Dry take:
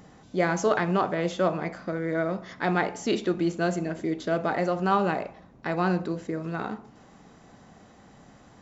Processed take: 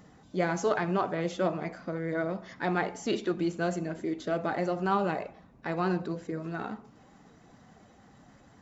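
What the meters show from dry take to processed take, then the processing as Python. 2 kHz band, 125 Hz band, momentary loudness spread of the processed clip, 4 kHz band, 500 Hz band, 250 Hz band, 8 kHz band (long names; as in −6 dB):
−4.5 dB, −4.0 dB, 9 LU, −4.0 dB, −4.0 dB, −4.0 dB, can't be measured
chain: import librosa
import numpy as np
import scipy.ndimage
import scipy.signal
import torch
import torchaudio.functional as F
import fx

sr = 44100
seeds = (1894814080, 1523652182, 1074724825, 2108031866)

y = fx.spec_quant(x, sr, step_db=15)
y = y * 10.0 ** (-3.5 / 20.0)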